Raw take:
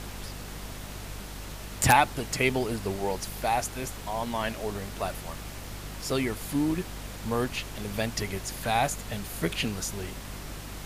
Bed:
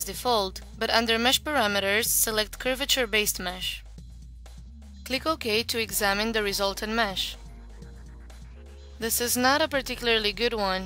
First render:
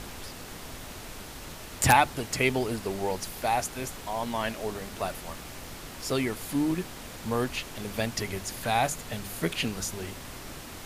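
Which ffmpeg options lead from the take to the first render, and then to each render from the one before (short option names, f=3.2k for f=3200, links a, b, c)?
-af "bandreject=f=50:t=h:w=4,bandreject=f=100:t=h:w=4,bandreject=f=150:t=h:w=4,bandreject=f=200:t=h:w=4"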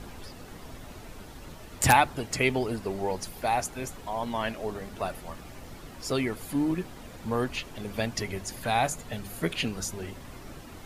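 -af "afftdn=nr=9:nf=-43"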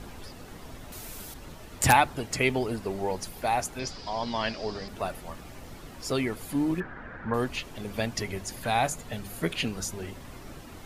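-filter_complex "[0:a]asettb=1/sr,asplit=3[a][b][c];[a]atrim=end=0.924[d];[b]atrim=start=0.92:end=1.34,asetpts=PTS-STARTPTS,afade=t=in:d=0.004:c=qsin,afade=t=out:st=0.416:d=0.004:c=qsin,aemphasis=mode=production:type=75kf[e];[c]atrim=start=1.336[f];[d][e]acrossfade=d=0.004:c1=hsin:c2=qsin[g];[g][f]acrossfade=d=0.004:c1=qsin:c2=hsin,asettb=1/sr,asplit=3[h][i][j];[h]atrim=end=3.794[k];[i]atrim=start=3.79:end=4.88,asetpts=PTS-STARTPTS,afade=t=in:d=0.004:c=qsin,afade=t=out:st=1.086:d=0.004:c=qsin,lowpass=f=4.9k:t=q:w=9.7[l];[j]atrim=start=4.876[m];[k][l]acrossfade=d=0.004:c1=hsin:c2=qsin[n];[n][m]acrossfade=d=0.004:c1=qsin:c2=hsin,asettb=1/sr,asplit=3[o][p][q];[o]atrim=end=6.804[r];[p]atrim=start=6.8:end=7.34,asetpts=PTS-STARTPTS,afade=t=in:d=0.004:c=qsin,afade=t=out:st=0.536:d=0.004:c=qsin,lowpass=f=1.6k:t=q:w=5.5[s];[q]atrim=start=7.336[t];[r][s]acrossfade=d=0.004:c1=hsin:c2=qsin[u];[u][t]acrossfade=d=0.004:c1=qsin:c2=hsin"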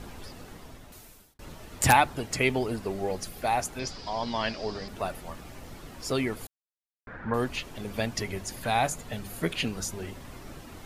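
-filter_complex "[0:a]asettb=1/sr,asplit=3[a][b][c];[a]atrim=end=2.944[d];[b]atrim=start=2.94:end=3.45,asetpts=PTS-STARTPTS,afade=t=in:d=0.004:c=qsin,afade=t=out:st=0.506:d=0.004:c=qsin,asuperstop=centerf=920:order=4:qfactor=6[e];[c]atrim=start=3.446[f];[d][e]acrossfade=d=0.004:c1=hsin:c2=qsin[g];[g][f]acrossfade=d=0.004:c1=qsin:c2=hsin,asplit=4[h][i][j][k];[h]atrim=end=1.39,asetpts=PTS-STARTPTS,afade=t=out:st=0.4:d=0.99[l];[i]atrim=start=1.39:end=6.47,asetpts=PTS-STARTPTS,afade=t=in:d=0.004:c=hsin,afade=t=out:st=5.076:d=0.004:c=hsin[m];[j]atrim=start=6.47:end=7.07,asetpts=PTS-STARTPTS,volume=0[n];[k]atrim=start=7.07,asetpts=PTS-STARTPTS,afade=t=in:d=0.004:c=hsin[o];[l][m][n][o]concat=n=4:v=0:a=1"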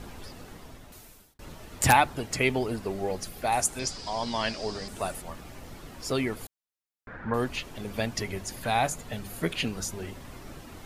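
-filter_complex "[0:a]asettb=1/sr,asplit=3[a][b][c];[a]atrim=end=3.524[d];[b]atrim=start=3.52:end=5.22,asetpts=PTS-STARTPTS,afade=t=in:d=0.004:c=qsin,afade=t=out:st=1.696:d=0.004:c=qsin,equalizer=f=8.6k:t=o:w=0.91:g=12.5[e];[c]atrim=start=5.216[f];[d][e]acrossfade=d=0.004:c1=hsin:c2=qsin[g];[g][f]acrossfade=d=0.004:c1=qsin:c2=hsin"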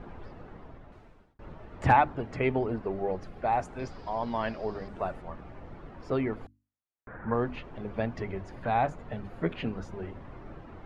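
-af "lowpass=1.5k,bandreject=f=50:t=h:w=6,bandreject=f=100:t=h:w=6,bandreject=f=150:t=h:w=6,bandreject=f=200:t=h:w=6,bandreject=f=250:t=h:w=6,bandreject=f=300:t=h:w=6"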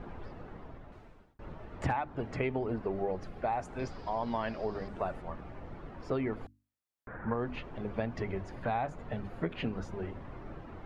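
-af "acompressor=threshold=-28dB:ratio=16"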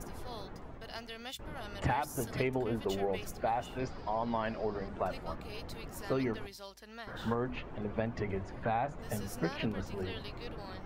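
-filter_complex "[1:a]volume=-22dB[a];[0:a][a]amix=inputs=2:normalize=0"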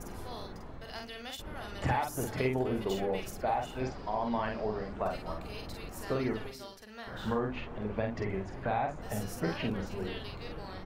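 -filter_complex "[0:a]asplit=2[a][b];[b]adelay=47,volume=-4dB[c];[a][c]amix=inputs=2:normalize=0,asplit=2[d][e];[e]adelay=349.9,volume=-20dB,highshelf=f=4k:g=-7.87[f];[d][f]amix=inputs=2:normalize=0"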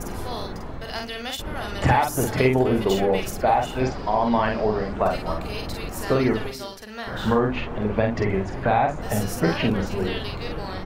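-af "volume=11.5dB"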